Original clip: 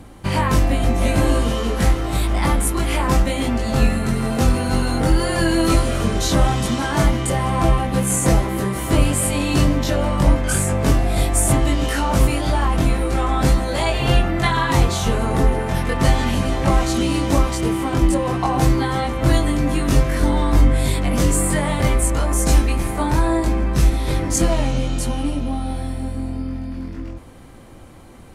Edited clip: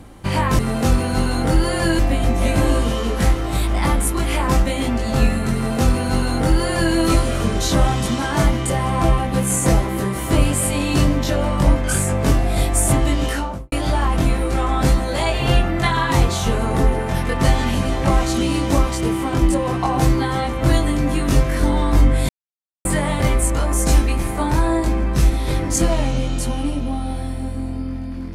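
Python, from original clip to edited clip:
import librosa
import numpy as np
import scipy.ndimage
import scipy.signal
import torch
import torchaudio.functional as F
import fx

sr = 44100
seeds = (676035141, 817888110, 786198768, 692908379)

y = fx.studio_fade_out(x, sr, start_s=11.86, length_s=0.46)
y = fx.edit(y, sr, fx.duplicate(start_s=4.15, length_s=1.4, to_s=0.59),
    fx.silence(start_s=20.89, length_s=0.56), tone=tone)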